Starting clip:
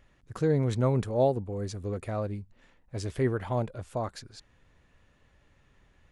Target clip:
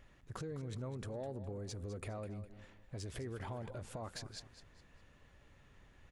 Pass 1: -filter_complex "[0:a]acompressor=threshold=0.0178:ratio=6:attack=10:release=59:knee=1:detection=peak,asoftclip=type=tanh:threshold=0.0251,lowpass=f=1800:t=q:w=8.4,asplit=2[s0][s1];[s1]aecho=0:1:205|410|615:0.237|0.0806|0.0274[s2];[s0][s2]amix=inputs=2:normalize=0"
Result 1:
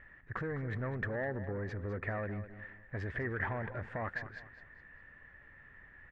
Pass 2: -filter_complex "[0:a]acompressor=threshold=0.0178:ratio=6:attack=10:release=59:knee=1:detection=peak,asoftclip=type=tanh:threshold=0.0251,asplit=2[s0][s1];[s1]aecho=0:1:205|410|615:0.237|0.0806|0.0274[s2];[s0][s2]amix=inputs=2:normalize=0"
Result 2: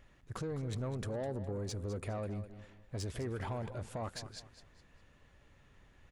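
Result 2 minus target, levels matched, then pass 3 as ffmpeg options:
compression: peak gain reduction -6.5 dB
-filter_complex "[0:a]acompressor=threshold=0.00708:ratio=6:attack=10:release=59:knee=1:detection=peak,asoftclip=type=tanh:threshold=0.0251,asplit=2[s0][s1];[s1]aecho=0:1:205|410|615:0.237|0.0806|0.0274[s2];[s0][s2]amix=inputs=2:normalize=0"

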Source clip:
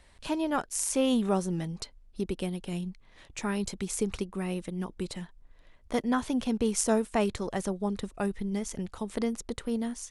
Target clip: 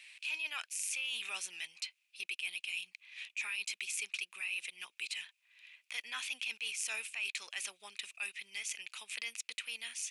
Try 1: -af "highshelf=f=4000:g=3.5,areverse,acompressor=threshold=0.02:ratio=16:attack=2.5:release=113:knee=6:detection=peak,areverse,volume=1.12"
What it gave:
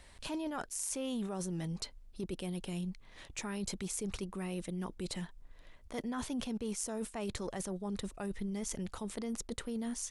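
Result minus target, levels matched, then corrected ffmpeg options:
2 kHz band -11.5 dB
-af "highpass=f=2500:t=q:w=9,highshelf=f=4000:g=3.5,areverse,acompressor=threshold=0.02:ratio=16:attack=2.5:release=113:knee=6:detection=peak,areverse,volume=1.12"

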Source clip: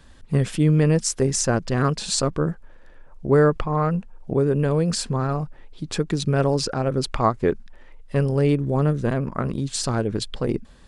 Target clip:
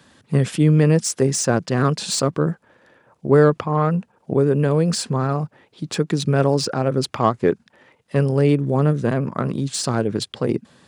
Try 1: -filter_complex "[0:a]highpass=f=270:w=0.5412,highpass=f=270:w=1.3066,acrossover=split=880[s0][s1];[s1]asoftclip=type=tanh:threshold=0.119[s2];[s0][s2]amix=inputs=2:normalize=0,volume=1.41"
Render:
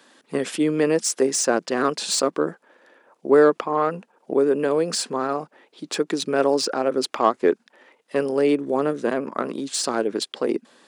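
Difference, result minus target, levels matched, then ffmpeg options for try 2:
125 Hz band -18.0 dB
-filter_complex "[0:a]highpass=f=110:w=0.5412,highpass=f=110:w=1.3066,acrossover=split=880[s0][s1];[s1]asoftclip=type=tanh:threshold=0.119[s2];[s0][s2]amix=inputs=2:normalize=0,volume=1.41"

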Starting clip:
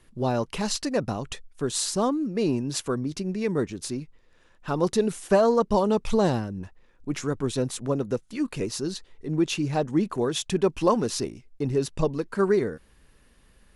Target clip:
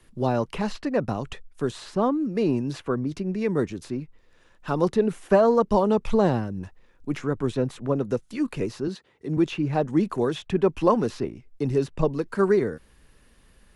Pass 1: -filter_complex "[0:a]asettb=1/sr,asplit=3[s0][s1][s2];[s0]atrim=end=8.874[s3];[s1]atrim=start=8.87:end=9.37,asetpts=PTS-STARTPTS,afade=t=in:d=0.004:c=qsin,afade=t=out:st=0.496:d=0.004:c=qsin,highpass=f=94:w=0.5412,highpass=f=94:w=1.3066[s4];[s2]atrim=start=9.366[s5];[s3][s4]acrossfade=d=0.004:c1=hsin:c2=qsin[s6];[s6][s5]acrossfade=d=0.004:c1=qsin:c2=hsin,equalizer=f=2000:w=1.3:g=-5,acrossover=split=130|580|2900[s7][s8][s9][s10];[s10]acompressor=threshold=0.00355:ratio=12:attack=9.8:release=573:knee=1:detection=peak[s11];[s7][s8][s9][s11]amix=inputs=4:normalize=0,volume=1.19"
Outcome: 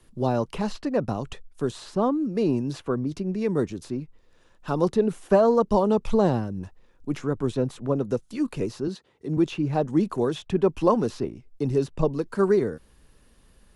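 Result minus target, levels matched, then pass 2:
2 kHz band -3.5 dB
-filter_complex "[0:a]asettb=1/sr,asplit=3[s0][s1][s2];[s0]atrim=end=8.874[s3];[s1]atrim=start=8.87:end=9.37,asetpts=PTS-STARTPTS,afade=t=in:d=0.004:c=qsin,afade=t=out:st=0.496:d=0.004:c=qsin,highpass=f=94:w=0.5412,highpass=f=94:w=1.3066[s4];[s2]atrim=start=9.366[s5];[s3][s4]acrossfade=d=0.004:c1=hsin:c2=qsin[s6];[s6][s5]acrossfade=d=0.004:c1=qsin:c2=hsin,acrossover=split=130|580|2900[s7][s8][s9][s10];[s10]acompressor=threshold=0.00355:ratio=12:attack=9.8:release=573:knee=1:detection=peak[s11];[s7][s8][s9][s11]amix=inputs=4:normalize=0,volume=1.19"

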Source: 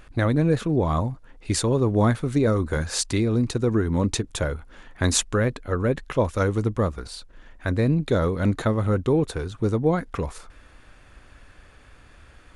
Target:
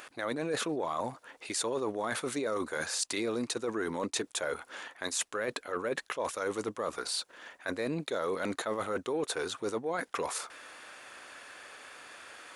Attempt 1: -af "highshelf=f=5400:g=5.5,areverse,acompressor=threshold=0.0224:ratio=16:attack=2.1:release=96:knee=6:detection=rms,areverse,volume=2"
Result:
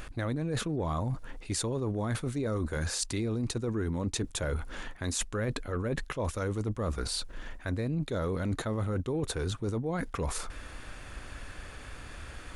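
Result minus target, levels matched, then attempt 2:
500 Hz band -2.5 dB
-af "highpass=500,highshelf=f=5400:g=5.5,areverse,acompressor=threshold=0.0224:ratio=16:attack=2.1:release=96:knee=6:detection=rms,areverse,volume=2"

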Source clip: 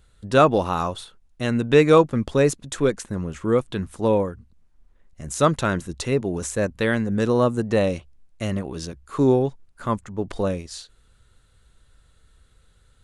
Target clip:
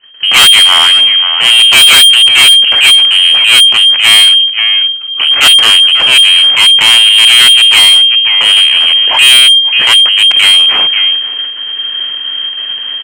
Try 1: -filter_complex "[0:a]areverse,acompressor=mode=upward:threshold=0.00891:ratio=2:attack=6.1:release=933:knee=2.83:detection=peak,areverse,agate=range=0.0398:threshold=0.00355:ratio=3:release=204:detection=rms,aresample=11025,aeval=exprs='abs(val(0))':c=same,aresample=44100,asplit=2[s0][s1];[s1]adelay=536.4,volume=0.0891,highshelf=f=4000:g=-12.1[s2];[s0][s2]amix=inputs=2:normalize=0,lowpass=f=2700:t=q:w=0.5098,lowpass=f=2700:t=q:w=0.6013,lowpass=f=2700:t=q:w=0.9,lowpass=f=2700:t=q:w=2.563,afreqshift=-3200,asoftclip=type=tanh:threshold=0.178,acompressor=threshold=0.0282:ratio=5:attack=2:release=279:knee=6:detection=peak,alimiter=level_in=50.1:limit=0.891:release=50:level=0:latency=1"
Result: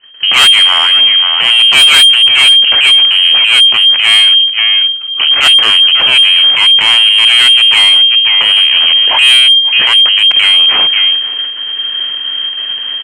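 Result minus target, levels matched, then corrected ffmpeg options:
saturation: distortion -6 dB
-filter_complex "[0:a]areverse,acompressor=mode=upward:threshold=0.00891:ratio=2:attack=6.1:release=933:knee=2.83:detection=peak,areverse,agate=range=0.0398:threshold=0.00355:ratio=3:release=204:detection=rms,aresample=11025,aeval=exprs='abs(val(0))':c=same,aresample=44100,asplit=2[s0][s1];[s1]adelay=536.4,volume=0.0891,highshelf=f=4000:g=-12.1[s2];[s0][s2]amix=inputs=2:normalize=0,lowpass=f=2700:t=q:w=0.5098,lowpass=f=2700:t=q:w=0.6013,lowpass=f=2700:t=q:w=0.9,lowpass=f=2700:t=q:w=2.563,afreqshift=-3200,asoftclip=type=tanh:threshold=0.0708,acompressor=threshold=0.0282:ratio=5:attack=2:release=279:knee=6:detection=peak,alimiter=level_in=50.1:limit=0.891:release=50:level=0:latency=1"

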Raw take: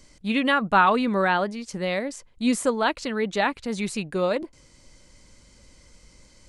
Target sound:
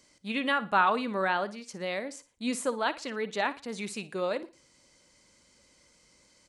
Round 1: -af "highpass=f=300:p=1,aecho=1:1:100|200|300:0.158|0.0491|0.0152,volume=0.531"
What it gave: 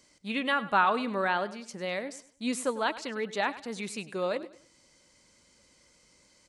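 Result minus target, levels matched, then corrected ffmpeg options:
echo 42 ms late
-af "highpass=f=300:p=1,aecho=1:1:58|116|174:0.158|0.0491|0.0152,volume=0.531"

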